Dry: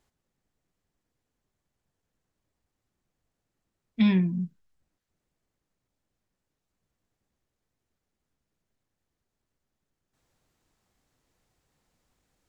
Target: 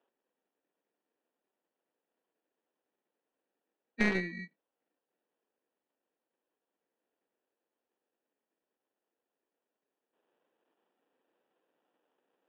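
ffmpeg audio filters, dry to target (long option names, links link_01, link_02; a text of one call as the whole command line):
ffmpeg -i in.wav -af "acrusher=samples=21:mix=1:aa=0.000001,highpass=frequency=270:width=0.5412,highpass=frequency=270:width=1.3066,equalizer=frequency=480:width_type=q:width=4:gain=4,equalizer=frequency=1200:width_type=q:width=4:gain=-5,equalizer=frequency=1900:width_type=q:width=4:gain=5,lowpass=frequency=3400:width=0.5412,lowpass=frequency=3400:width=1.3066,aeval=exprs='0.126*(cos(1*acos(clip(val(0)/0.126,-1,1)))-cos(1*PI/2))+0.0562*(cos(2*acos(clip(val(0)/0.126,-1,1)))-cos(2*PI/2))+0.0112*(cos(3*acos(clip(val(0)/0.126,-1,1)))-cos(3*PI/2))+0.00282*(cos(8*acos(clip(val(0)/0.126,-1,1)))-cos(8*PI/2))':channel_layout=same" out.wav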